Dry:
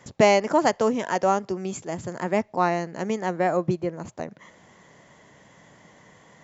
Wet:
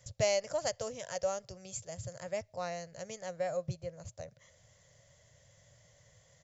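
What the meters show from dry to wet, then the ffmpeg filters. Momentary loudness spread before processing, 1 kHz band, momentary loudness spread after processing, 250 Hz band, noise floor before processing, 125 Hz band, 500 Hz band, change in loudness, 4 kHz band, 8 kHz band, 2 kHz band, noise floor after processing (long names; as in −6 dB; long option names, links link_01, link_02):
14 LU, −18.5 dB, 14 LU, −22.5 dB, −55 dBFS, −11.0 dB, −11.5 dB, −13.0 dB, −7.0 dB, can't be measured, −14.5 dB, −65 dBFS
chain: -af "firequalizer=gain_entry='entry(110,0);entry(200,-24);entry(350,-29);entry(550,-7);entry(860,-23);entry(1400,-17);entry(4900,-3)':delay=0.05:min_phase=1"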